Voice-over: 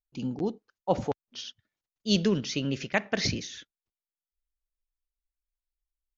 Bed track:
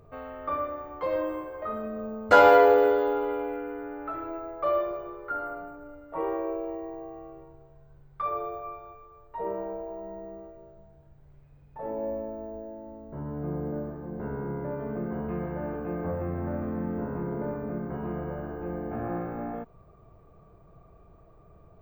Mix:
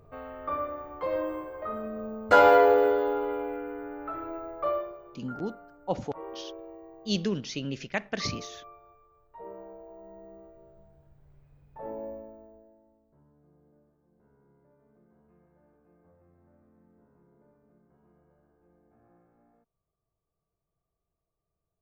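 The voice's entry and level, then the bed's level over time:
5.00 s, -4.0 dB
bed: 4.66 s -1.5 dB
4.97 s -11 dB
9.78 s -11 dB
10.81 s -3.5 dB
11.88 s -3.5 dB
13.47 s -31.5 dB

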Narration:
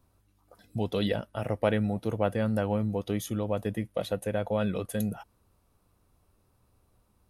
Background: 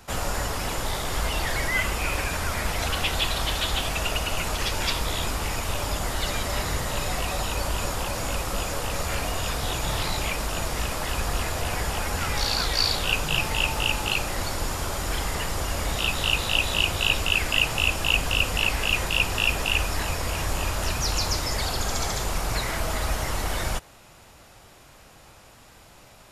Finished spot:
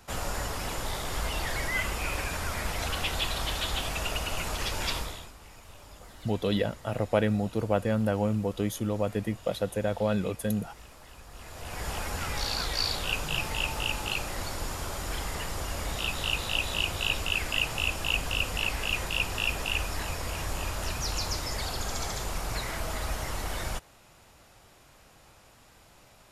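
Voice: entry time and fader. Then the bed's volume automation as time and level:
5.50 s, +1.0 dB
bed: 4.98 s -5 dB
5.33 s -22 dB
11.28 s -22 dB
11.89 s -6 dB

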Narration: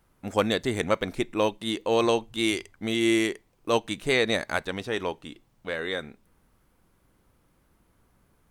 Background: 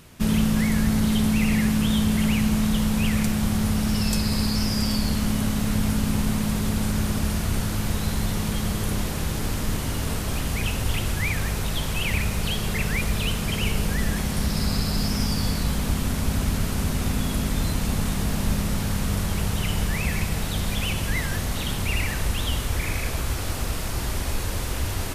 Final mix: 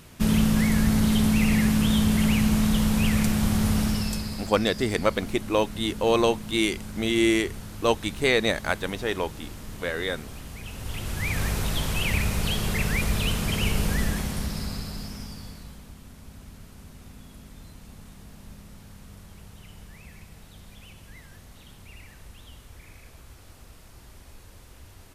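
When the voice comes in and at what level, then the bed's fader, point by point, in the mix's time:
4.15 s, +1.5 dB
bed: 3.81 s 0 dB
4.54 s -13.5 dB
10.63 s -13.5 dB
11.42 s -0.5 dB
13.98 s -0.5 dB
15.93 s -21.5 dB

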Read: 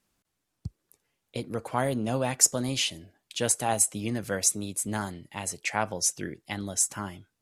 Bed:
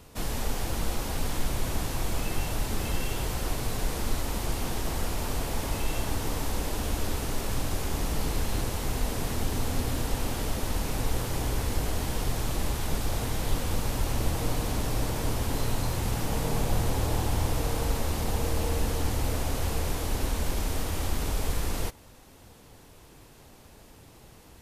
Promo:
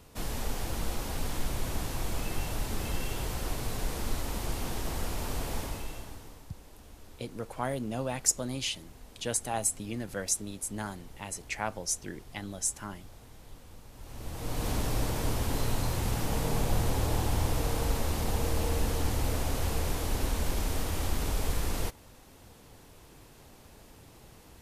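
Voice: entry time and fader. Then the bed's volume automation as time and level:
5.85 s, -5.5 dB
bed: 5.57 s -3.5 dB
6.46 s -22 dB
13.91 s -22 dB
14.67 s -1.5 dB

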